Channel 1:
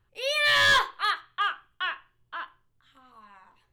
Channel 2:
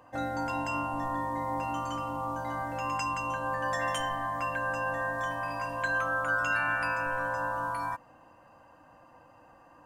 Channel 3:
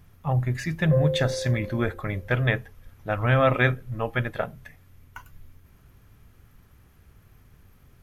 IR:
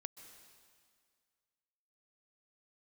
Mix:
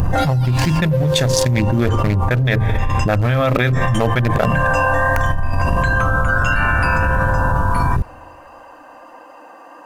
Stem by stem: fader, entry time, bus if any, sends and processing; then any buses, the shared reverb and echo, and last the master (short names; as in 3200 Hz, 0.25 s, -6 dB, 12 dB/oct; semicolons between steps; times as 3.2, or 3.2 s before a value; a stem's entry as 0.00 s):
-13.0 dB, 0.00 s, send -7.5 dB, differentiator; ring modulator with a swept carrier 1100 Hz, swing 50%, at 2.8 Hz; auto duck -14 dB, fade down 1.10 s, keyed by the third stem
2.23 s -10 dB -> 2.77 s -22 dB -> 3.64 s -22 dB -> 3.86 s -10 dB -> 5.07 s -10 dB -> 5.35 s -20.5 dB, 0.00 s, send -14.5 dB, flange 1.5 Hz, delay 1.4 ms, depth 6.9 ms, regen -56%; HPF 270 Hz 24 dB/oct
-1.5 dB, 0.00 s, send -16.5 dB, Wiener smoothing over 41 samples; tone controls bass +3 dB, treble +13 dB; de-hum 54.79 Hz, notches 3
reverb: on, RT60 2.0 s, pre-delay 0.118 s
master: fast leveller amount 100%